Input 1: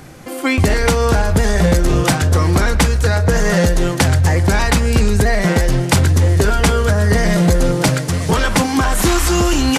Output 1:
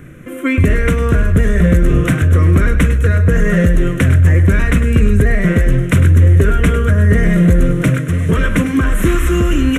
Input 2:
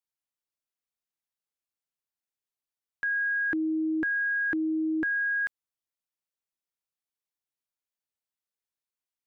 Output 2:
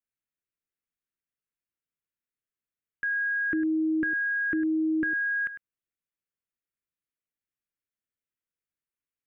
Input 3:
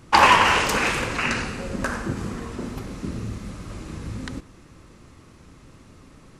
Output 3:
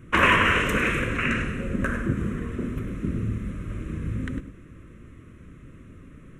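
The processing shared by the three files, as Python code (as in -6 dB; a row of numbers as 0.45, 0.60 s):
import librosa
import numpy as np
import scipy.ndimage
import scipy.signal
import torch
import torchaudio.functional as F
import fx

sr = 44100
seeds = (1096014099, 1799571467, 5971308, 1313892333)

p1 = fx.high_shelf(x, sr, hz=2500.0, db=-9.5)
p2 = fx.fixed_phaser(p1, sr, hz=2000.0, stages=4)
p3 = p2 + fx.echo_single(p2, sr, ms=102, db=-12.0, dry=0)
y = F.gain(torch.from_numpy(p3), 3.5).numpy()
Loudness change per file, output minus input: +2.0, +0.5, -3.0 LU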